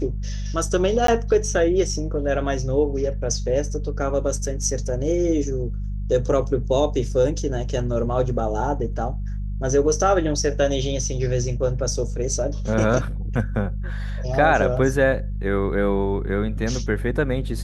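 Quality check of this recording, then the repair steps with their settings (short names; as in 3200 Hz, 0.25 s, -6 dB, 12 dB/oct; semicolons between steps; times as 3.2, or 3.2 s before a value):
hum 50 Hz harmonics 4 -27 dBFS
1.07–1.08 gap 13 ms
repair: de-hum 50 Hz, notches 4; interpolate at 1.07, 13 ms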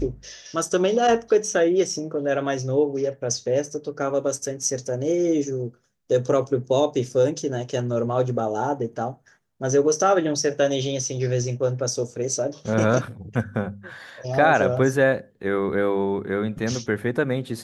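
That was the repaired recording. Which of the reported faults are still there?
none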